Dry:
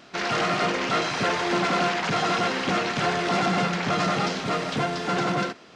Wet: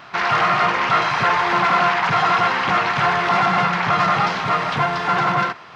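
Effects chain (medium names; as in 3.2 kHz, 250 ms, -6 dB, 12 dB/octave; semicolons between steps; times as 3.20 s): graphic EQ 125/250/500/1000/2000/8000 Hz +6/-8/-4/+11/+4/-9 dB; in parallel at -2.5 dB: peak limiter -21.5 dBFS, peak gain reduction 13.5 dB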